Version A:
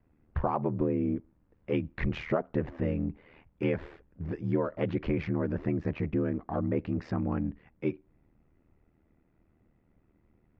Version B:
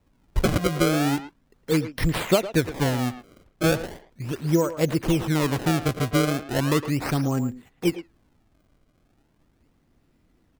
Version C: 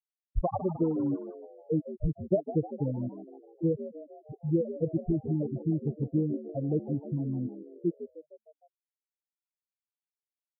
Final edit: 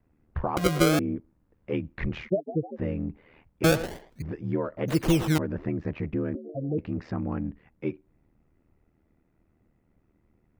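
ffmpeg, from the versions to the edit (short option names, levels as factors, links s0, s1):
-filter_complex "[1:a]asplit=3[s0][s1][s2];[2:a]asplit=2[s3][s4];[0:a]asplit=6[s5][s6][s7][s8][s9][s10];[s5]atrim=end=0.572[s11];[s0]atrim=start=0.568:end=0.992[s12];[s6]atrim=start=0.988:end=2.3[s13];[s3]atrim=start=2.24:end=2.81[s14];[s7]atrim=start=2.75:end=3.642[s15];[s1]atrim=start=3.638:end=4.222[s16];[s8]atrim=start=4.218:end=4.882[s17];[s2]atrim=start=4.878:end=5.382[s18];[s9]atrim=start=5.378:end=6.352[s19];[s4]atrim=start=6.348:end=6.782[s20];[s10]atrim=start=6.778[s21];[s11][s12]acrossfade=d=0.004:c1=hsin:c2=hsin[s22];[s22][s13]acrossfade=d=0.004:c1=hsin:c2=hsin[s23];[s23][s14]acrossfade=d=0.06:c1=tri:c2=tri[s24];[s24][s15]acrossfade=d=0.06:c1=tri:c2=tri[s25];[s25][s16]acrossfade=d=0.004:c1=hsin:c2=hsin[s26];[s26][s17]acrossfade=d=0.004:c1=hsin:c2=hsin[s27];[s27][s18]acrossfade=d=0.004:c1=hsin:c2=hsin[s28];[s28][s19]acrossfade=d=0.004:c1=hsin:c2=hsin[s29];[s29][s20]acrossfade=d=0.004:c1=hsin:c2=hsin[s30];[s30][s21]acrossfade=d=0.004:c1=hsin:c2=hsin"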